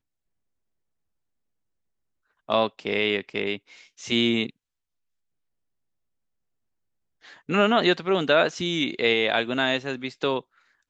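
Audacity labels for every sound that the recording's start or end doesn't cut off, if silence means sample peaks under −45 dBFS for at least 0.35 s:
2.490000	4.500000	sound
7.240000	10.410000	sound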